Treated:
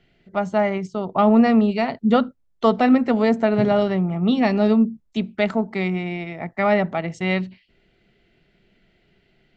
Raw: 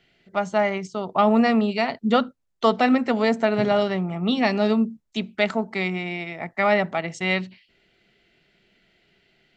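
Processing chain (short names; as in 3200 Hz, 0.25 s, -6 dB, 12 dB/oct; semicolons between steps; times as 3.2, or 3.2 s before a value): tilt -2 dB/oct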